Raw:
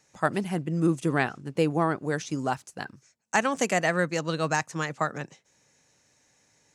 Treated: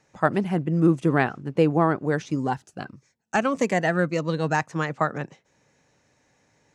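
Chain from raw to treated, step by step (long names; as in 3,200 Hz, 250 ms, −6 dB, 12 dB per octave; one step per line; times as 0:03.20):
low-pass filter 1,800 Hz 6 dB per octave
0:02.31–0:04.55: phaser whose notches keep moving one way falling 1.6 Hz
level +5 dB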